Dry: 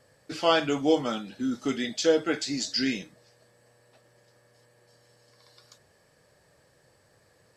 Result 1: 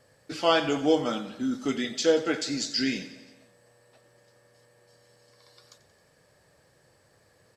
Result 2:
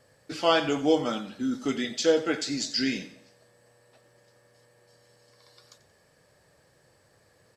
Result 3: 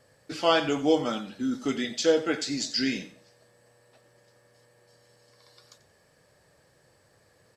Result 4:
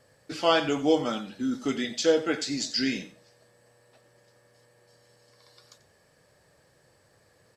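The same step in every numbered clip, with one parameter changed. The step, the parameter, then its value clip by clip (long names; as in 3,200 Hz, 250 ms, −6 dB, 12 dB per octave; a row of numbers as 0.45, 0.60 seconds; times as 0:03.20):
repeating echo, feedback: 60, 40, 26, 18%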